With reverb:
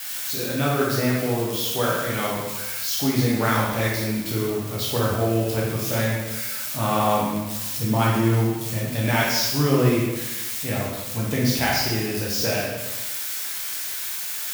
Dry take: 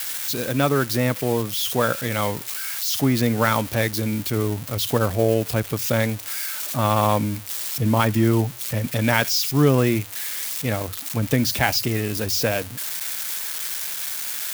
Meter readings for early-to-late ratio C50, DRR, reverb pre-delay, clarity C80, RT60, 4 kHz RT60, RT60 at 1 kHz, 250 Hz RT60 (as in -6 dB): 0.0 dB, -5.0 dB, 5 ms, 3.0 dB, 1.1 s, 1.0 s, 1.1 s, 1.1 s